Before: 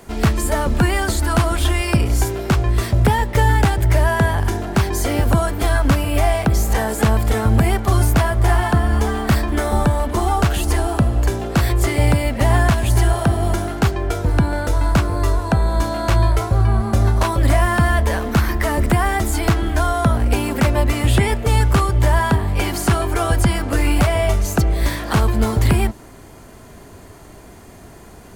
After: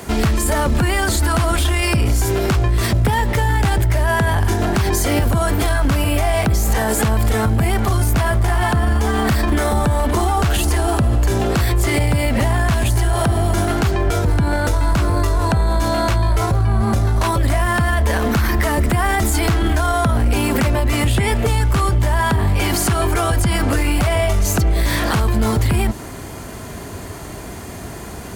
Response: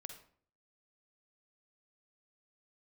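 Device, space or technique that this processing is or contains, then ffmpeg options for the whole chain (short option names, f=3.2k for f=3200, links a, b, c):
mastering chain: -af "highpass=48,equalizer=f=500:t=o:w=2.9:g=-2.5,acompressor=threshold=-18dB:ratio=2,asoftclip=type=tanh:threshold=-9.5dB,alimiter=level_in=20dB:limit=-1dB:release=50:level=0:latency=1,volume=-8.5dB"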